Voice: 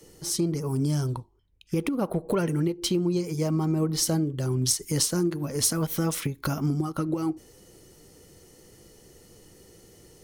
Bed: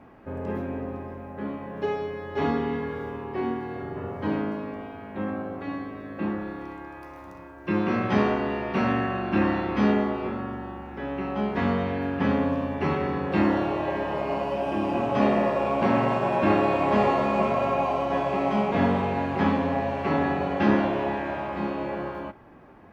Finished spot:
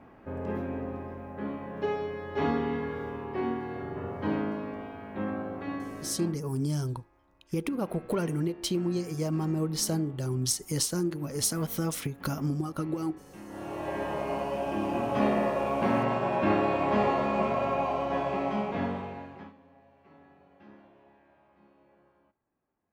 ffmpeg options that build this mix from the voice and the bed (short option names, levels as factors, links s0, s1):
-filter_complex "[0:a]adelay=5800,volume=0.631[s0];[1:a]volume=7.94,afade=t=out:st=6.03:d=0.35:silence=0.0794328,afade=t=in:st=13.48:d=0.54:silence=0.0944061,afade=t=out:st=18.28:d=1.25:silence=0.0375837[s1];[s0][s1]amix=inputs=2:normalize=0"